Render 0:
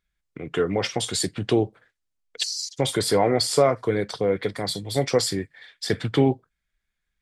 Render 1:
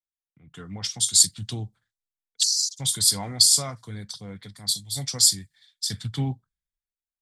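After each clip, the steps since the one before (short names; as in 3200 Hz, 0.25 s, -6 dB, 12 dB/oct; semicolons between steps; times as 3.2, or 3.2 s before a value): EQ curve 110 Hz 0 dB, 210 Hz -3 dB, 380 Hz -20 dB, 540 Hz -19 dB, 850 Hz -9 dB, 2500 Hz -7 dB, 3600 Hz +7 dB, 6800 Hz +13 dB; three-band expander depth 70%; gain -4.5 dB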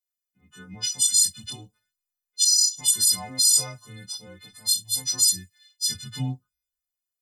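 frequency quantiser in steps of 3 st; limiter -3 dBFS, peak gain reduction 9.5 dB; chorus voices 2, 0.38 Hz, delay 13 ms, depth 2.7 ms; gain -2.5 dB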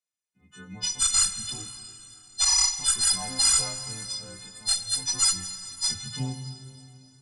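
one diode to ground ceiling -21.5 dBFS; downsampling 22050 Hz; plate-style reverb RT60 3.3 s, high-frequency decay 0.9×, DRR 8.5 dB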